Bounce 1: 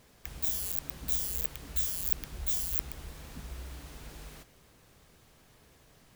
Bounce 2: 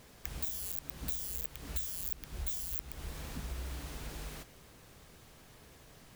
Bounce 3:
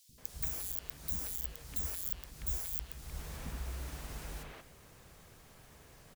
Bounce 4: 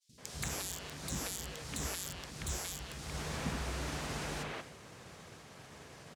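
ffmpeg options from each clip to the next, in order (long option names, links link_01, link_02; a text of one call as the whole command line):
ffmpeg -i in.wav -af "acompressor=threshold=-39dB:ratio=3,volume=3.5dB" out.wav
ffmpeg -i in.wav -filter_complex "[0:a]acrossover=split=280|3700[link_01][link_02][link_03];[link_01]adelay=90[link_04];[link_02]adelay=180[link_05];[link_04][link_05][link_03]amix=inputs=3:normalize=0" out.wav
ffmpeg -i in.wav -af "agate=range=-33dB:threshold=-54dB:ratio=3:detection=peak,highpass=110,lowpass=7400,volume=9.5dB" out.wav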